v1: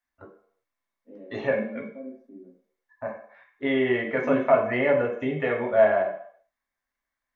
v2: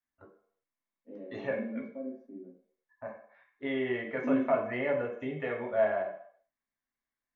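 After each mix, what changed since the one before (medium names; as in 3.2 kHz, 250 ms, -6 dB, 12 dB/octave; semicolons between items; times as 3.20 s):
first voice -8.5 dB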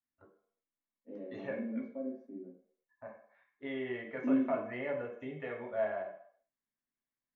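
first voice -6.5 dB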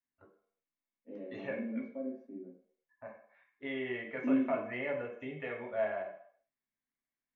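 master: add peaking EQ 2.5 kHz +6 dB 0.73 oct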